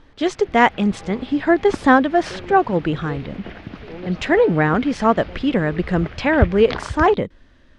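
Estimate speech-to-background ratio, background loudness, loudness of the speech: 14.0 dB, -32.5 LUFS, -18.5 LUFS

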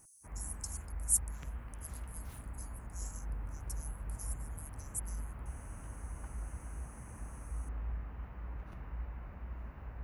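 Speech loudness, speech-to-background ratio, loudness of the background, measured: -39.5 LUFS, 6.0 dB, -45.5 LUFS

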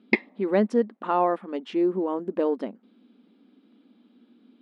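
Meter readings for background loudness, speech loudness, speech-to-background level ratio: -26.5 LUFS, -26.0 LUFS, 0.5 dB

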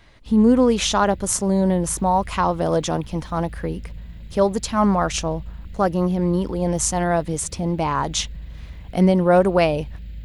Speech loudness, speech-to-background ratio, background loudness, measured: -20.5 LUFS, 18.5 dB, -39.0 LUFS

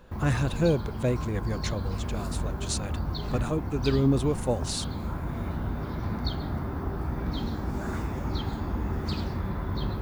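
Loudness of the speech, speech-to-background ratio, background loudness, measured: -29.5 LUFS, 3.5 dB, -33.0 LUFS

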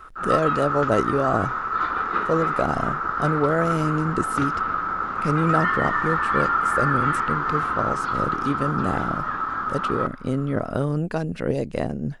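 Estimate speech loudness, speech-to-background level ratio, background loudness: -26.0 LUFS, -2.0 dB, -24.0 LUFS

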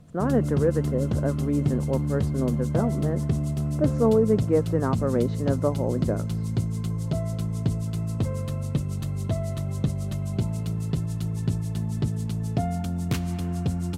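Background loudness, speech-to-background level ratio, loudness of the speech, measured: -28.0 LUFS, 1.5 dB, -26.5 LUFS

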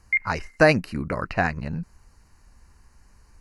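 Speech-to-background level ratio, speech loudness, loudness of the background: 1.5 dB, -24.0 LUFS, -25.5 LUFS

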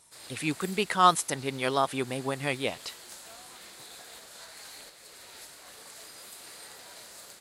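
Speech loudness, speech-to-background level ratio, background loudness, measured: -28.0 LUFS, 17.5 dB, -45.5 LUFS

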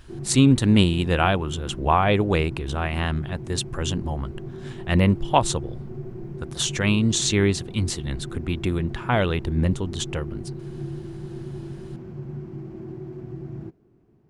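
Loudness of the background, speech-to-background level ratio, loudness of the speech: -36.0 LUFS, 13.0 dB, -23.0 LUFS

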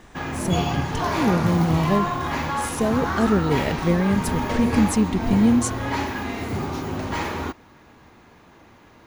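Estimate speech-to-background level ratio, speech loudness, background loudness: 3.0 dB, -23.0 LUFS, -26.0 LUFS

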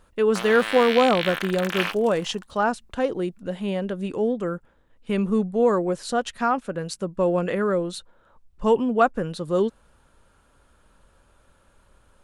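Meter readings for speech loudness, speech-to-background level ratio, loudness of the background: -23.5 LUFS, 5.0 dB, -28.5 LUFS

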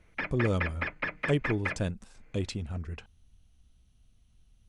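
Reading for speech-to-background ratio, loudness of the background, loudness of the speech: 1.5 dB, -34.5 LUFS, -33.0 LUFS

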